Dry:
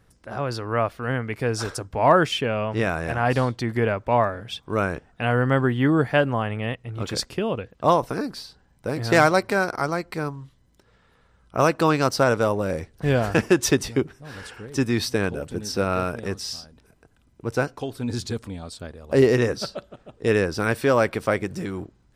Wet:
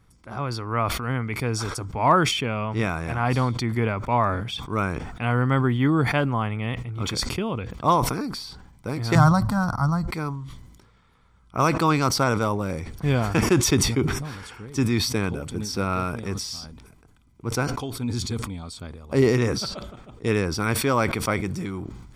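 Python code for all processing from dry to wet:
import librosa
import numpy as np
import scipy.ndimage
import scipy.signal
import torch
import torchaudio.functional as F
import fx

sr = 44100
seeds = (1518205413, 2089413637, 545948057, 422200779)

y = fx.chain(x, sr, fx.bass_treble(bass_db=14, treble_db=-4),
    fx.fixed_phaser(hz=950.0, stages=4), at=(9.15, 10.08))
y = y + 0.45 * np.pad(y, (int(0.9 * sr / 1000.0), 0))[:len(y)]
y = fx.sustainer(y, sr, db_per_s=48.0)
y = y * librosa.db_to_amplitude(-2.0)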